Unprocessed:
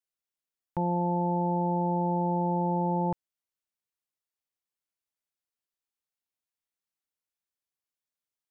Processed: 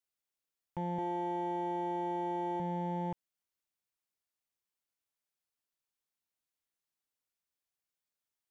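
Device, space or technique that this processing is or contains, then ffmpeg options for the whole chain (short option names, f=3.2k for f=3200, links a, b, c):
limiter into clipper: -filter_complex "[0:a]alimiter=level_in=4.5dB:limit=-24dB:level=0:latency=1,volume=-4.5dB,asoftclip=type=hard:threshold=-30dB,asettb=1/sr,asplit=3[a][b][c];[a]atrim=end=0.984[d];[b]atrim=start=0.98:end=2.6,asetpts=PTS-STARTPTS,afade=t=in:d=0.004:c=qsin,afade=t=out:st=1.616:d=0.004:c=qsin,aecho=1:1:2.6:0.93,atrim=end_sample=71442[e];[c]atrim=start=2.596[f];[d][e]acrossfade=d=0.004:c1=hsin:c2=qsin[g];[g][f]acrossfade=d=0.004:c1=qsin:c2=hsin"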